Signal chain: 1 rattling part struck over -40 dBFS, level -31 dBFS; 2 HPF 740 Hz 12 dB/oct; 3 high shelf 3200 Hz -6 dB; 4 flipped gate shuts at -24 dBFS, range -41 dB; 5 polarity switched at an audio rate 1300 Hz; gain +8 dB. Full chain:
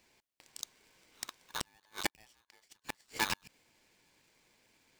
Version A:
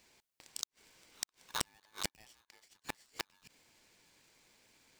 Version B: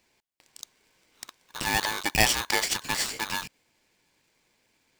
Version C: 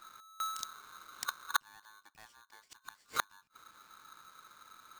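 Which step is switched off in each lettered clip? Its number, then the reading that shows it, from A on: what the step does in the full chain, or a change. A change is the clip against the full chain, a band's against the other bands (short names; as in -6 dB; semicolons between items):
3, 8 kHz band +5.0 dB; 4, momentary loudness spread change +10 LU; 2, 250 Hz band -13.5 dB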